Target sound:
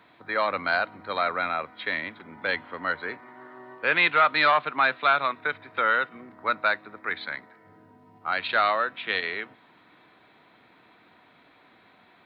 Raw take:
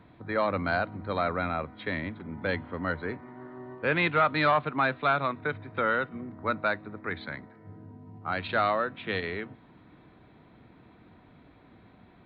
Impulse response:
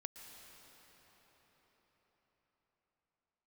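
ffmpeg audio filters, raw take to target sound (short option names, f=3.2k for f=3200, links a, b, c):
-af "highpass=f=1.4k:p=1,volume=8dB"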